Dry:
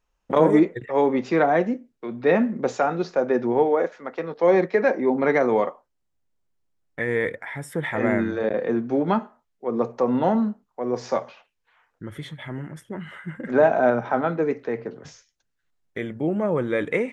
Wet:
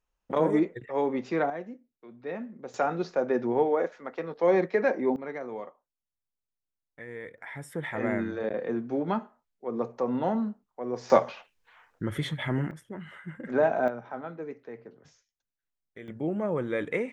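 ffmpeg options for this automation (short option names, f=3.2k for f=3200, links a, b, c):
-af "asetnsamples=n=441:p=0,asendcmd='1.5 volume volume -17dB;2.74 volume volume -5dB;5.16 volume volume -17dB;7.38 volume volume -7dB;11.1 volume volume 4.5dB;12.71 volume volume -6.5dB;13.88 volume volume -15dB;16.08 volume volume -6dB',volume=-7.5dB"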